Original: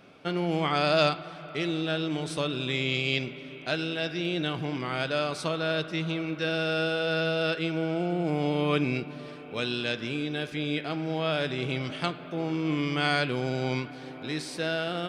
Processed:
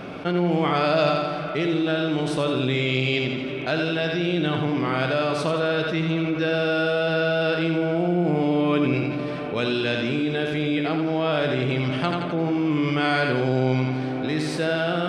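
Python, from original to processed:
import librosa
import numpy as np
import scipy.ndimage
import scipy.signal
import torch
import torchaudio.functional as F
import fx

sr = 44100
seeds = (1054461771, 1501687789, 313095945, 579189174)

y = fx.high_shelf(x, sr, hz=3100.0, db=-10.0)
y = fx.echo_feedback(y, sr, ms=85, feedback_pct=44, wet_db=-6)
y = fx.env_flatten(y, sr, amount_pct=50)
y = y * librosa.db_to_amplitude(2.0)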